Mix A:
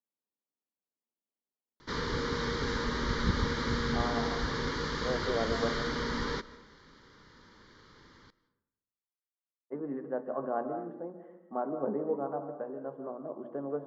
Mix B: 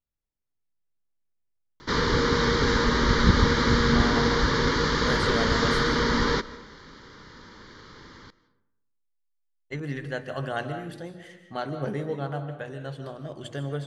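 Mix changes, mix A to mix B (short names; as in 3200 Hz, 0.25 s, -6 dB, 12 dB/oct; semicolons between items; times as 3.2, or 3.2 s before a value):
speech: remove Chebyshev band-pass 220–1100 Hz, order 3; background +10.0 dB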